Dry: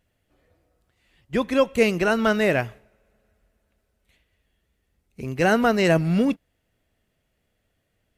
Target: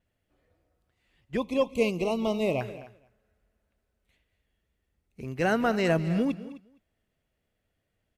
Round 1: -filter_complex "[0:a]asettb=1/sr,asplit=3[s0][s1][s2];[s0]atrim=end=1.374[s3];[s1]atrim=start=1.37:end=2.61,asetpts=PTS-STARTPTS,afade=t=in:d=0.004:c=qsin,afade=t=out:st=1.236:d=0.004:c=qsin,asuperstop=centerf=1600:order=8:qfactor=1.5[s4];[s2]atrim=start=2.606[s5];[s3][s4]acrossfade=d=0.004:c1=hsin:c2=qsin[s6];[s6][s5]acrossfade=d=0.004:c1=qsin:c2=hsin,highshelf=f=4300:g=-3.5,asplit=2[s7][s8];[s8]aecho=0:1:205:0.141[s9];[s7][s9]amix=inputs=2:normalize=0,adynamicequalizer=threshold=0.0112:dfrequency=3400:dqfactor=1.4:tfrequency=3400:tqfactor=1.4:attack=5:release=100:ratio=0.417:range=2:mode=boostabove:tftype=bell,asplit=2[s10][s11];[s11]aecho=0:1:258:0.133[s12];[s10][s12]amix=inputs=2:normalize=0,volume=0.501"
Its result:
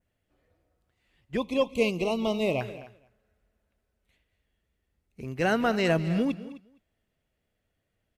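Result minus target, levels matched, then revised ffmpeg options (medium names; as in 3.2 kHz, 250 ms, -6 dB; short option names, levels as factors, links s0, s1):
4 kHz band +3.0 dB
-filter_complex "[0:a]asettb=1/sr,asplit=3[s0][s1][s2];[s0]atrim=end=1.374[s3];[s1]atrim=start=1.37:end=2.61,asetpts=PTS-STARTPTS,afade=t=in:d=0.004:c=qsin,afade=t=out:st=1.236:d=0.004:c=qsin,asuperstop=centerf=1600:order=8:qfactor=1.5[s4];[s2]atrim=start=2.606[s5];[s3][s4]acrossfade=d=0.004:c1=hsin:c2=qsin[s6];[s6][s5]acrossfade=d=0.004:c1=qsin:c2=hsin,highshelf=f=4300:g=-3.5,asplit=2[s7][s8];[s8]aecho=0:1:205:0.141[s9];[s7][s9]amix=inputs=2:normalize=0,adynamicequalizer=threshold=0.0112:dfrequency=13000:dqfactor=1.4:tfrequency=13000:tqfactor=1.4:attack=5:release=100:ratio=0.417:range=2:mode=boostabove:tftype=bell,asplit=2[s10][s11];[s11]aecho=0:1:258:0.133[s12];[s10][s12]amix=inputs=2:normalize=0,volume=0.501"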